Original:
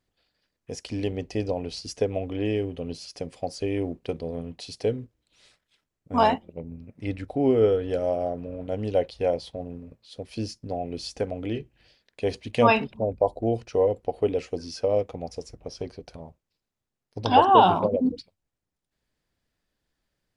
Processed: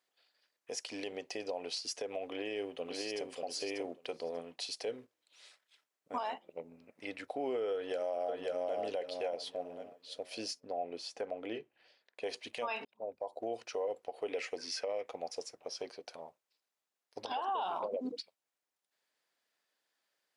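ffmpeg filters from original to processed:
ffmpeg -i in.wav -filter_complex "[0:a]asplit=2[link_01][link_02];[link_02]afade=type=in:start_time=2.26:duration=0.01,afade=type=out:start_time=3.27:duration=0.01,aecho=0:1:590|1180:0.668344|0.0668344[link_03];[link_01][link_03]amix=inputs=2:normalize=0,asplit=2[link_04][link_05];[link_05]afade=type=in:start_time=7.74:duration=0.01,afade=type=out:start_time=8.81:duration=0.01,aecho=0:1:540|1080|1620|2160:0.707946|0.212384|0.0637151|0.0191145[link_06];[link_04][link_06]amix=inputs=2:normalize=0,asettb=1/sr,asplit=3[link_07][link_08][link_09];[link_07]atrim=end=10.604[link_10];[link_08]atrim=start=10.6:end=12.24,asetpts=PTS-STARTPTS,afade=type=in:duration=0.004:curve=qsin,afade=type=out:start_time=1.636:duration=0.004:curve=qsin,highshelf=frequency=2500:gain=-10.5[link_11];[link_09]atrim=start=12.236[link_12];[link_10][link_11]acrossfade=duration=0.004:curve1=hsin:curve2=qsin[link_13];[link_13][link_12]acrossfade=duration=0.004:curve1=qsin:curve2=hsin,asettb=1/sr,asplit=3[link_14][link_15][link_16];[link_14]atrim=end=14.294[link_17];[link_15]atrim=start=14.29:end=15.09,asetpts=PTS-STARTPTS,afade=type=in:duration=0.004:curve=qsin,afade=type=out:start_time=0.796:duration=0.004:curve=qsin,equalizer=frequency=2000:width=2.3:gain=10[link_18];[link_16]atrim=start=15.086[link_19];[link_17][link_18]acrossfade=duration=0.004:curve1=hsin:curve2=qsin[link_20];[link_20][link_19]acrossfade=duration=0.004:curve1=qsin:curve2=hsin,asplit=2[link_21][link_22];[link_21]atrim=end=12.85,asetpts=PTS-STARTPTS,afade=type=out:start_time=12.846:duration=0.004:curve=hsin[link_23];[link_22]atrim=start=12.85,asetpts=PTS-STARTPTS,afade=type=in:duration=0.66[link_24];[link_23][link_24]concat=n=2:v=0:a=1,highpass=600,acompressor=threshold=-28dB:ratio=5,alimiter=level_in=3.5dB:limit=-24dB:level=0:latency=1:release=92,volume=-3.5dB" out.wav

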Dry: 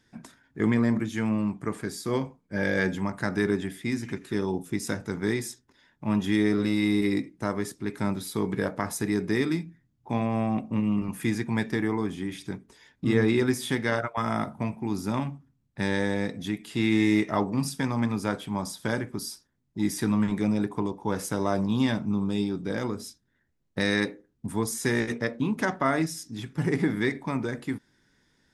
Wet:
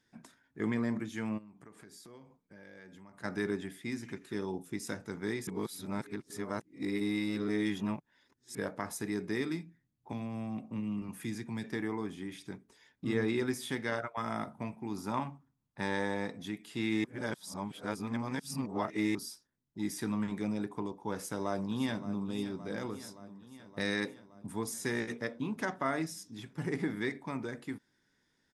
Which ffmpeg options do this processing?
ffmpeg -i in.wav -filter_complex "[0:a]asplit=3[link_01][link_02][link_03];[link_01]afade=type=out:start_time=1.37:duration=0.02[link_04];[link_02]acompressor=threshold=-42dB:ratio=6:attack=3.2:release=140:knee=1:detection=peak,afade=type=in:start_time=1.37:duration=0.02,afade=type=out:start_time=3.23:duration=0.02[link_05];[link_03]afade=type=in:start_time=3.23:duration=0.02[link_06];[link_04][link_05][link_06]amix=inputs=3:normalize=0,asettb=1/sr,asplit=3[link_07][link_08][link_09];[link_07]atrim=end=10.124[link_10];[link_08]atrim=start=10.12:end=11.64,asetpts=PTS-STARTPTS,afade=type=in:duration=0.004:curve=qsin,afade=type=out:start_time=1.516:duration=0.004:curve=qsin,acrossover=split=290|3000[link_11][link_12][link_13];[link_12]acompressor=threshold=-39dB:ratio=3:attack=3.2:release=140:knee=2.83:detection=peak[link_14];[link_11][link_14][link_13]amix=inputs=3:normalize=0[link_15];[link_09]atrim=start=11.636[link_16];[link_10][link_15]acrossfade=duration=0.004:curve1=hsin:curve2=qsin[link_17];[link_17][link_16]acrossfade=duration=0.004:curve1=qsin:curve2=hsin,asettb=1/sr,asplit=3[link_18][link_19][link_20];[link_18]atrim=end=14.974[link_21];[link_19]atrim=start=14.97:end=16.46,asetpts=PTS-STARTPTS,afade=type=in:duration=0.004:curve=qsin,afade=type=out:start_time=1.486:duration=0.004:curve=qsin,equalizer=frequency=970:width_type=o:width=1:gain=8[link_22];[link_20]atrim=start=16.456[link_23];[link_21][link_22]acrossfade=duration=0.004:curve1=hsin:curve2=qsin[link_24];[link_24][link_23]acrossfade=duration=0.004:curve1=qsin:curve2=hsin,asplit=2[link_25][link_26];[link_26]afade=type=in:start_time=21.14:duration=0.01,afade=type=out:start_time=22.28:duration=0.01,aecho=0:1:570|1140|1710|2280|2850|3420|3990|4560|5130:0.211349|0.147944|0.103561|0.0724927|0.0507449|0.0355214|0.024865|0.0174055|0.0121838[link_27];[link_25][link_27]amix=inputs=2:normalize=0,asplit=5[link_28][link_29][link_30][link_31][link_32];[link_28]atrim=end=5.472[link_33];[link_29]atrim=start=5.468:end=8.552,asetpts=PTS-STARTPTS,areverse[link_34];[link_30]atrim=start=8.548:end=17.042[link_35];[link_31]atrim=start=17.038:end=19.152,asetpts=PTS-STARTPTS,areverse[link_36];[link_32]atrim=start=19.148[link_37];[link_33][link_34]acrossfade=duration=0.004:curve1=hsin:curve2=hsin[link_38];[link_38][link_35]acrossfade=duration=0.004:curve1=hsin:curve2=hsin[link_39];[link_39][link_36]acrossfade=duration=0.004:curve1=hsin:curve2=hsin[link_40];[link_40][link_37]acrossfade=duration=0.004:curve1=hsin:curve2=hsin,lowshelf=frequency=120:gain=-7.5,volume=-7.5dB" out.wav

